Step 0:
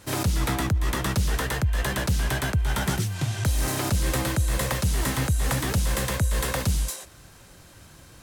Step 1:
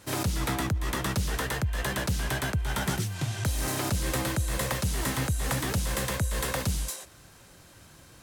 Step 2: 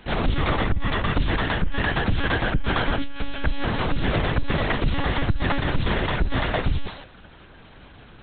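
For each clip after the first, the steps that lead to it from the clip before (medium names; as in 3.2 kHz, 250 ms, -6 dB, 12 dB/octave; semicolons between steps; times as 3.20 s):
bass shelf 72 Hz -6 dB; trim -2.5 dB
monotone LPC vocoder at 8 kHz 280 Hz; trim +7.5 dB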